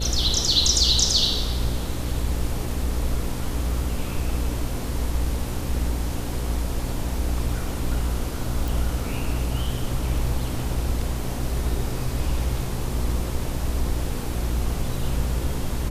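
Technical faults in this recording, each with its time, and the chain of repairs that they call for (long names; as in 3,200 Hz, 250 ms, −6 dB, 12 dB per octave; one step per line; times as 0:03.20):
mains buzz 60 Hz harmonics 9 −29 dBFS
0:08.68: click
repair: click removal
hum removal 60 Hz, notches 9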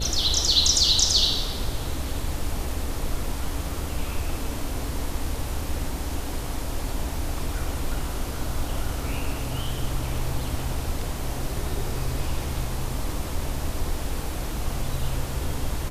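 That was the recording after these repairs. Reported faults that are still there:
none of them is left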